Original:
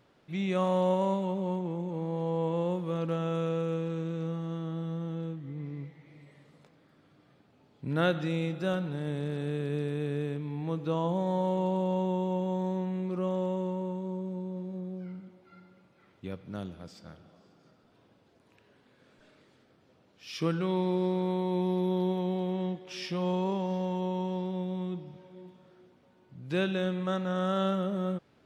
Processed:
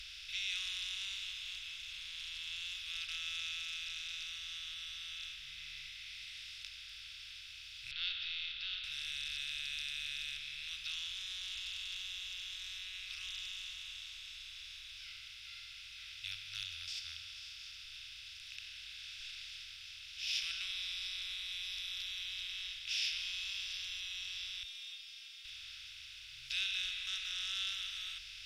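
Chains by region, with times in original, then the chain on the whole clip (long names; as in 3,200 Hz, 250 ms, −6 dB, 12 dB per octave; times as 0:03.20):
0:07.91–0:08.84: parametric band 980 Hz −12.5 dB 0.93 octaves + leveller curve on the samples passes 1 + Chebyshev low-pass with heavy ripple 4,500 Hz, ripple 9 dB
0:24.63–0:25.45: spectral tilt +4.5 dB per octave + stiff-string resonator 220 Hz, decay 0.34 s, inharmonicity 0.002
whole clip: compressor on every frequency bin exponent 0.4; inverse Chebyshev band-stop filter 180–810 Hz, stop band 70 dB; high-shelf EQ 4,400 Hz −8.5 dB; level +6 dB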